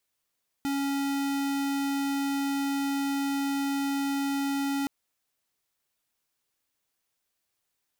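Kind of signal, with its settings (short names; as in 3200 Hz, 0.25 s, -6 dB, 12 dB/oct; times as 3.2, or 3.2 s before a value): tone square 278 Hz -28.5 dBFS 4.22 s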